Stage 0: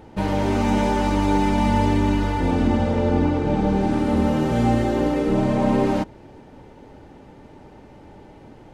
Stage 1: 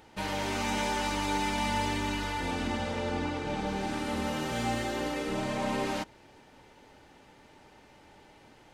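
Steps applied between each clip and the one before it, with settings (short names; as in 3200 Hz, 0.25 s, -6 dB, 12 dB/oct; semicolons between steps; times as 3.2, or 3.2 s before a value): tilt shelf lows -8.5 dB; gain -7 dB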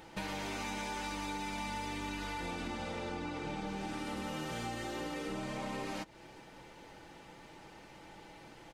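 comb 6 ms, depth 40%; compressor 6:1, threshold -39 dBFS, peak gain reduction 12.5 dB; gain +2 dB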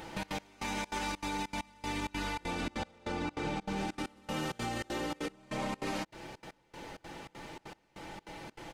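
limiter -34 dBFS, peak gain reduction 8 dB; step gate "xxx.x...xxx.xxx." 196 bpm -24 dB; gain +7.5 dB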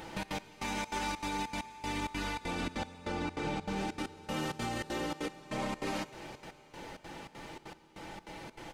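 reverb RT60 4.7 s, pre-delay 13 ms, DRR 14 dB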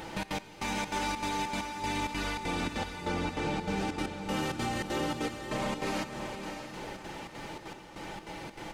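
in parallel at -5 dB: soft clip -34 dBFS, distortion -12 dB; on the sum: diffused feedback echo 0.619 s, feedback 42%, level -7.5 dB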